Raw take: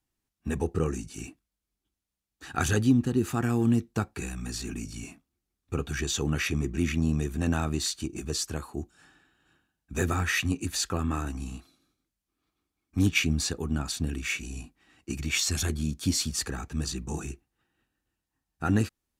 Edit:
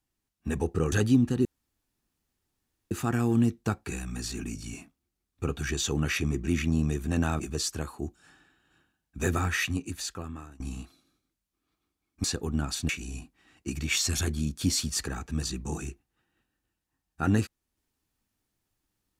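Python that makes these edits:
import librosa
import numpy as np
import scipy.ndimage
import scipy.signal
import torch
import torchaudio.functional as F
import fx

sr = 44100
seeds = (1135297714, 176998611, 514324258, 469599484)

y = fx.edit(x, sr, fx.cut(start_s=0.92, length_s=1.76),
    fx.insert_room_tone(at_s=3.21, length_s=1.46),
    fx.cut(start_s=7.7, length_s=0.45),
    fx.fade_out_to(start_s=10.15, length_s=1.2, floor_db=-22.0),
    fx.cut(start_s=12.99, length_s=0.42),
    fx.cut(start_s=14.06, length_s=0.25), tone=tone)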